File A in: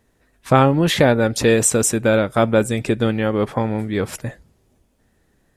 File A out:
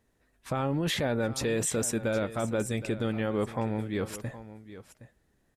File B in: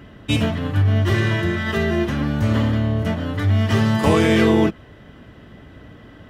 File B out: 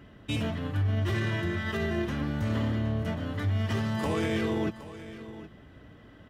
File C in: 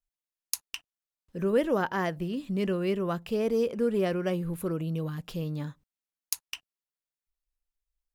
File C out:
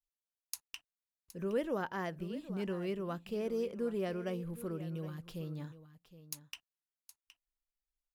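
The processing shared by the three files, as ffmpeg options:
ffmpeg -i in.wav -filter_complex "[0:a]alimiter=limit=-12dB:level=0:latency=1:release=11,asplit=2[link_01][link_02];[link_02]aecho=0:1:767:0.178[link_03];[link_01][link_03]amix=inputs=2:normalize=0,volume=-9dB" out.wav

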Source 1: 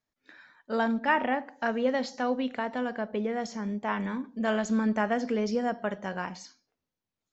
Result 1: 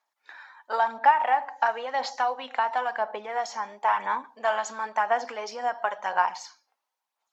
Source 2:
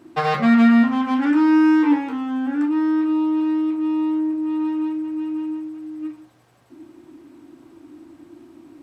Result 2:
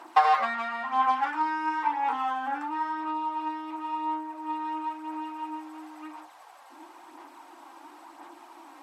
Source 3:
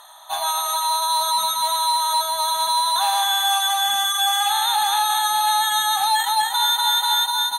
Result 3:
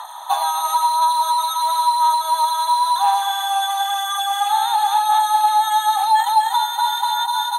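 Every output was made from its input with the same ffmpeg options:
ffmpeg -i in.wav -af "acompressor=threshold=-27dB:ratio=12,highpass=frequency=870:width_type=q:width=3.7,aphaser=in_gain=1:out_gain=1:delay=3.8:decay=0.36:speed=0.97:type=sinusoidal,volume=4dB" -ar 48000 -c:a libmp3lame -b:a 80k out.mp3

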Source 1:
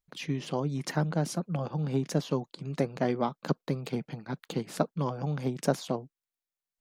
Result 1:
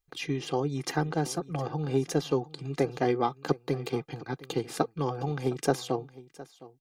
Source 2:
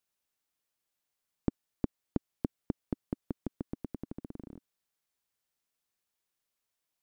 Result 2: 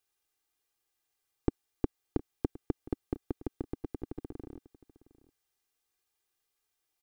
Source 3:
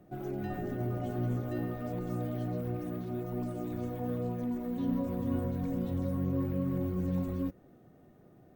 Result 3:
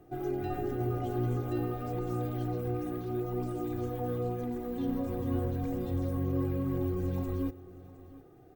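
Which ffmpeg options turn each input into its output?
ffmpeg -i in.wav -af "aecho=1:1:2.5:0.7,aecho=1:1:712:0.112,volume=1dB" out.wav

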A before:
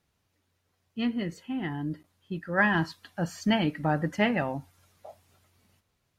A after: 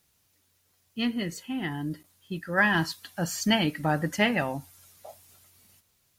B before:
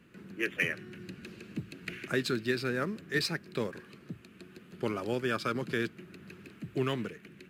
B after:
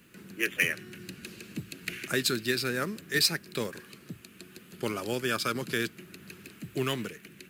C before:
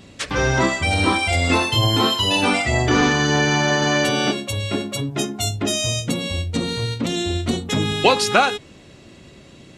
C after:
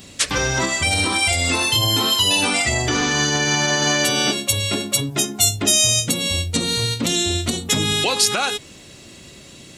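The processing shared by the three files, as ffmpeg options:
ffmpeg -i in.wav -af "alimiter=limit=-12.5dB:level=0:latency=1:release=166,crystalizer=i=3.5:c=0" out.wav

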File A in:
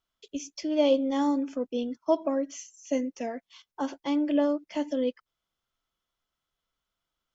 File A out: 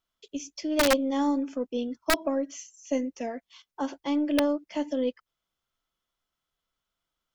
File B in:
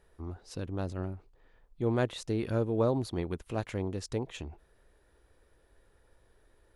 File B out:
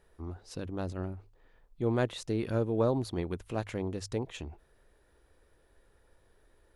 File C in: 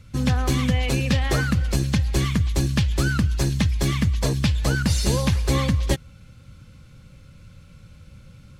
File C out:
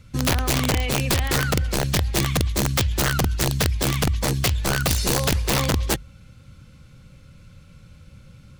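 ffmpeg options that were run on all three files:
ffmpeg -i in.wav -af "bandreject=frequency=50:width_type=h:width=6,bandreject=frequency=100:width_type=h:width=6,aeval=exprs='0.376*(cos(1*acos(clip(val(0)/0.376,-1,1)))-cos(1*PI/2))+0.00473*(cos(6*acos(clip(val(0)/0.376,-1,1)))-cos(6*PI/2))':channel_layout=same,aeval=exprs='(mod(5.01*val(0)+1,2)-1)/5.01':channel_layout=same" out.wav

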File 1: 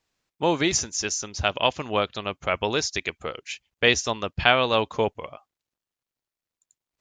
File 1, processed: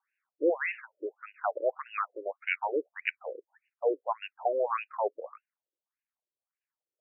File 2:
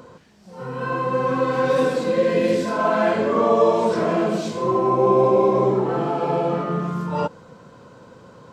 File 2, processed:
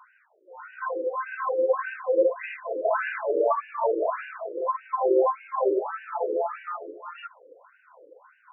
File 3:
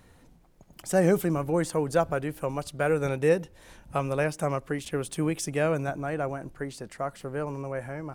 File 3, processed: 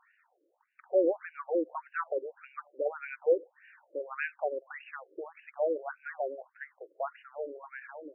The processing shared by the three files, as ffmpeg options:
ffmpeg -i in.wav -af "asubboost=boost=6:cutoff=110,afftfilt=real='re*between(b*sr/1024,410*pow(2100/410,0.5+0.5*sin(2*PI*1.7*pts/sr))/1.41,410*pow(2100/410,0.5+0.5*sin(2*PI*1.7*pts/sr))*1.41)':imag='im*between(b*sr/1024,410*pow(2100/410,0.5+0.5*sin(2*PI*1.7*pts/sr))/1.41,410*pow(2100/410,0.5+0.5*sin(2*PI*1.7*pts/sr))*1.41)':win_size=1024:overlap=0.75" out.wav

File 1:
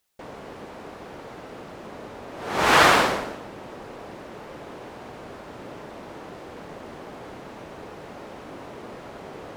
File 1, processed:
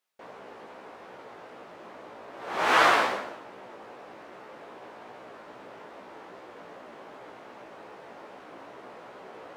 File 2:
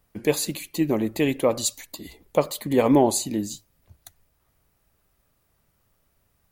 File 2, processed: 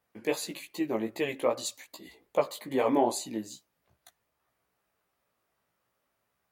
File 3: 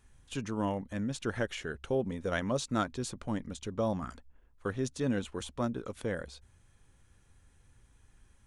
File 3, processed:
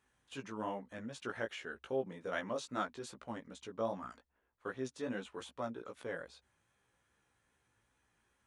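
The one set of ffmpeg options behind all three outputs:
ffmpeg -i in.wav -af "highpass=frequency=660:poles=1,highshelf=frequency=3500:gain=-10.5,flanger=delay=15:depth=3.2:speed=2.5,volume=1.5dB" out.wav

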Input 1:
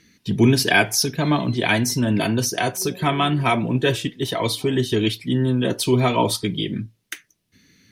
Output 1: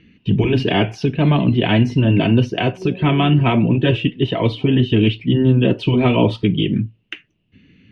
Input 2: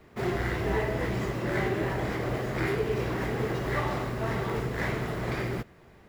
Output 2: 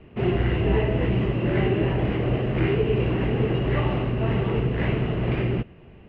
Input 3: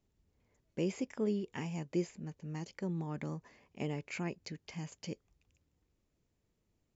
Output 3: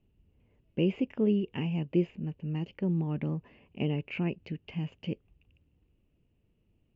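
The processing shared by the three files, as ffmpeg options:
ffmpeg -i in.wav -af "lowpass=frequency=2800:width_type=q:width=9.3,afftfilt=real='re*lt(hypot(re,im),1.12)':imag='im*lt(hypot(re,im),1.12)':win_size=1024:overlap=0.75,tiltshelf=frequency=840:gain=9.5" out.wav

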